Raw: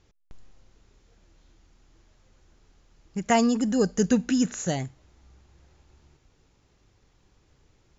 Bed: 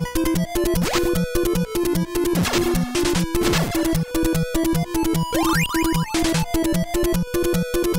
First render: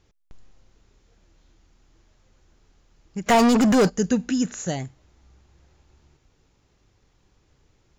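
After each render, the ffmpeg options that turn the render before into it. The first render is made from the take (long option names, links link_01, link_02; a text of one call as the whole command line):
ffmpeg -i in.wav -filter_complex "[0:a]asplit=3[link_01][link_02][link_03];[link_01]afade=type=out:start_time=3.26:duration=0.02[link_04];[link_02]asplit=2[link_05][link_06];[link_06]highpass=frequency=720:poles=1,volume=30dB,asoftclip=type=tanh:threshold=-9.5dB[link_07];[link_05][link_07]amix=inputs=2:normalize=0,lowpass=frequency=2600:poles=1,volume=-6dB,afade=type=in:start_time=3.26:duration=0.02,afade=type=out:start_time=3.88:duration=0.02[link_08];[link_03]afade=type=in:start_time=3.88:duration=0.02[link_09];[link_04][link_08][link_09]amix=inputs=3:normalize=0" out.wav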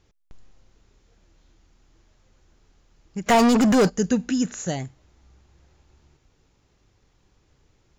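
ffmpeg -i in.wav -af anull out.wav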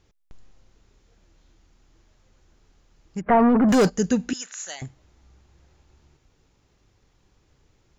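ffmpeg -i in.wav -filter_complex "[0:a]asettb=1/sr,asplit=3[link_01][link_02][link_03];[link_01]atrim=end=3.214[link_04];[link_02]atrim=start=3.21:end=3.69,asetpts=PTS-STARTPTS,afade=type=in:duration=0.004:curve=qsin,afade=type=out:start_time=0.476:duration=0.004:curve=qsin,lowpass=frequency=1700:width=0.5412,lowpass=frequency=1700:width=1.3066[link_05];[link_03]atrim=start=3.686[link_06];[link_04][link_05]acrossfade=duration=0.004:curve1=hsin:curve2=qsin[link_07];[link_07][link_06]acrossfade=duration=0.004:curve1=qsin:curve2=hsin,asettb=1/sr,asplit=3[link_08][link_09][link_10];[link_08]atrim=end=4.334[link_11];[link_09]atrim=start=4.33:end=4.82,asetpts=PTS-STARTPTS,afade=type=in:duration=0.004:curve=qsin,afade=type=out:start_time=0.486:duration=0.004:curve=qsin,highpass=1200[link_12];[link_10]atrim=start=4.816[link_13];[link_11][link_12]acrossfade=duration=0.004:curve1=hsin:curve2=qsin[link_14];[link_14][link_13]acrossfade=duration=0.004:curve1=qsin:curve2=hsin" out.wav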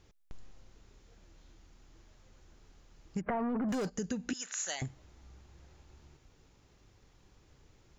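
ffmpeg -i in.wav -af "alimiter=limit=-17dB:level=0:latency=1:release=219,acompressor=threshold=-32dB:ratio=8" out.wav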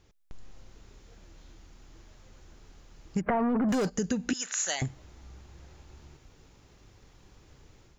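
ffmpeg -i in.wav -af "dynaudnorm=framelen=280:gausssize=3:maxgain=6.5dB" out.wav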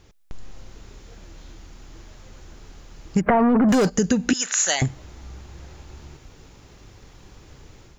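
ffmpeg -i in.wav -af "volume=9.5dB" out.wav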